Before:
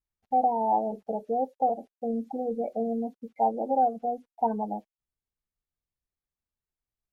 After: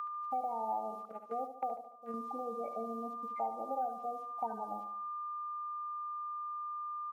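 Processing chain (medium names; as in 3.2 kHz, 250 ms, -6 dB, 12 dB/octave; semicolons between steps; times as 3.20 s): whistle 1.2 kHz -36 dBFS; 1.05–2.14 s: gate -27 dBFS, range -15 dB; tilt shelf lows -9.5 dB, about 1.1 kHz; on a send: feedback delay 73 ms, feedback 40%, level -9.5 dB; on the sum: three bands compressed up and down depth 70%; trim -7 dB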